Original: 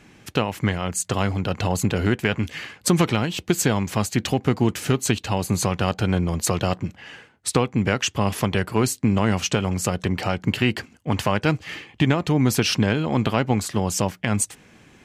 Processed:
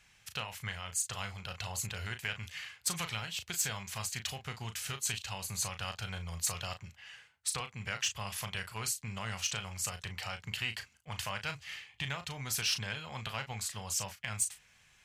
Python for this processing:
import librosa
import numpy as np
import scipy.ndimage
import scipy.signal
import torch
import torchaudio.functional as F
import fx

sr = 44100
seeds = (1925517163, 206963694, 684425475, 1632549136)

y = fx.tone_stack(x, sr, knobs='10-0-10')
y = fx.doubler(y, sr, ms=36.0, db=-9)
y = 10.0 ** (-14.0 / 20.0) * np.tanh(y / 10.0 ** (-14.0 / 20.0))
y = F.gain(torch.from_numpy(y), -6.0).numpy()